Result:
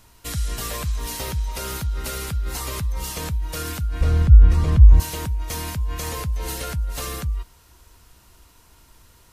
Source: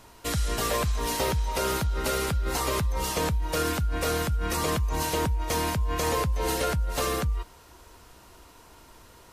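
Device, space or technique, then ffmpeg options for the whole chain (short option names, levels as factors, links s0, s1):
smiley-face EQ: -filter_complex "[0:a]asettb=1/sr,asplit=3[s0][s1][s2];[s0]atrim=end=4.014[s3];[s1]atrim=start=4.01:end=5,asetpts=PTS-STARTPTS,afade=t=in:d=0.004:c=qsin,afade=t=out:st=0.986:d=0.004:c=qsin,aemphasis=mode=reproduction:type=riaa[s4];[s2]atrim=start=4.996[s5];[s3][s4]acrossfade=d=0.004:c1=hsin:c2=qsin[s6];[s6][s5]acrossfade=d=0.004:c1=qsin:c2=hsin,lowshelf=f=190:g=4.5,equalizer=f=510:t=o:w=2.7:g=-7,highshelf=f=9600:g=5,volume=0.891"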